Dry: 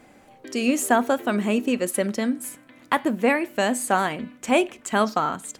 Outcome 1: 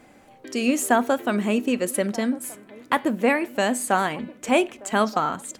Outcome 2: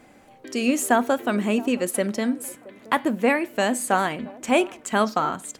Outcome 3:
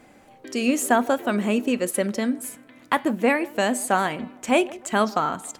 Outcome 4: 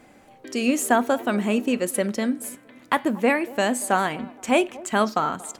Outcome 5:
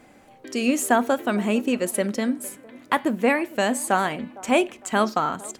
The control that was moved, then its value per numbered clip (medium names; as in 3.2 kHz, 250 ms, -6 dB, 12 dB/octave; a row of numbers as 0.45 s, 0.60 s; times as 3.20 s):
feedback echo behind a band-pass, time: 1228 ms, 672 ms, 154 ms, 233 ms, 457 ms